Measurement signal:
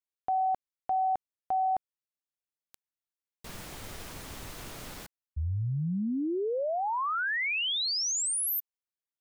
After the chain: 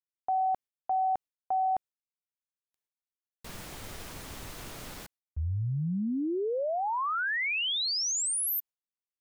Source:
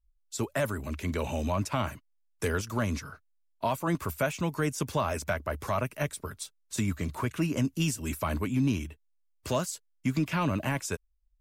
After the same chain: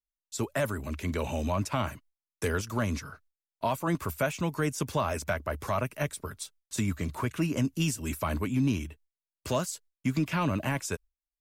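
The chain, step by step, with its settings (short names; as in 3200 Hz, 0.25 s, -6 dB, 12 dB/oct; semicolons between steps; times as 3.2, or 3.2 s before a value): gate with hold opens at -56 dBFS, hold 71 ms, range -28 dB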